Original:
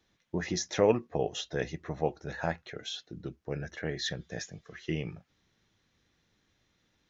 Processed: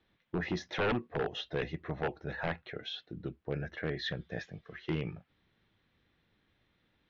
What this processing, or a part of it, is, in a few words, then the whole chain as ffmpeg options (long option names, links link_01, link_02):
synthesiser wavefolder: -af "aeval=exprs='0.0631*(abs(mod(val(0)/0.0631+3,4)-2)-1)':channel_layout=same,lowpass=frequency=3700:width=0.5412,lowpass=frequency=3700:width=1.3066"